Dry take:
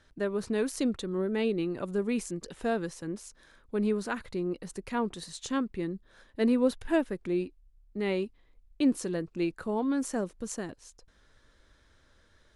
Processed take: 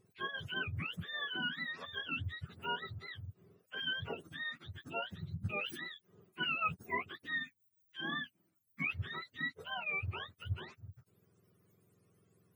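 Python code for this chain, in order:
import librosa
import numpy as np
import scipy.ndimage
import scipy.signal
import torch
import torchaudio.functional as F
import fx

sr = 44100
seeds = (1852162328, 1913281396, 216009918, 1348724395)

y = fx.octave_mirror(x, sr, pivot_hz=810.0)
y = fx.sustainer(y, sr, db_per_s=55.0, at=(5.47, 5.87))
y = F.gain(torch.from_numpy(y), -7.0).numpy()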